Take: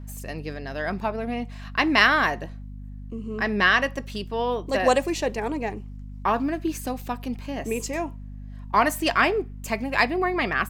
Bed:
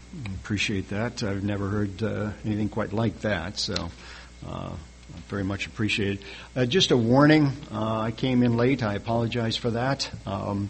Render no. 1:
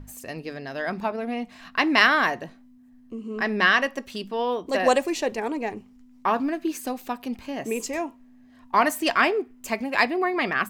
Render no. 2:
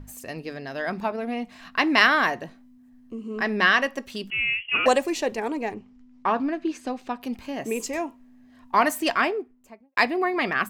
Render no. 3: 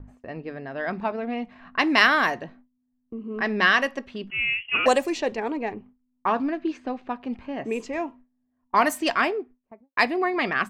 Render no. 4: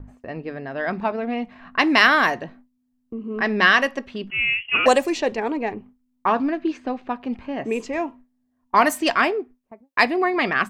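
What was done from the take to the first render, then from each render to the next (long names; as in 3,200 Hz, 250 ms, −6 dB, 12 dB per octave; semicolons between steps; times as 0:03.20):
mains-hum notches 50/100/150/200 Hz
0:04.30–0:04.86: voice inversion scrambler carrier 3,100 Hz; 0:05.74–0:07.22: high-frequency loss of the air 98 metres; 0:08.97–0:09.97: fade out and dull
low-pass that shuts in the quiet parts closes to 1,100 Hz, open at −17.5 dBFS; noise gate with hold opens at −40 dBFS
level +3.5 dB; brickwall limiter −1 dBFS, peak gain reduction 2 dB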